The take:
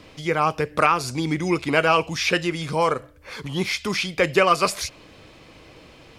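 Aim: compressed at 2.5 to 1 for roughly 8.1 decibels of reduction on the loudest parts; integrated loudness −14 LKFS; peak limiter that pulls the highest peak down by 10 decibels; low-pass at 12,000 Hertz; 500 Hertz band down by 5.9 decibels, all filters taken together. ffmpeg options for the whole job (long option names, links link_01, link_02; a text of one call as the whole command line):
ffmpeg -i in.wav -af "lowpass=12000,equalizer=frequency=500:width_type=o:gain=-7.5,acompressor=threshold=-27dB:ratio=2.5,volume=19dB,alimiter=limit=-3.5dB:level=0:latency=1" out.wav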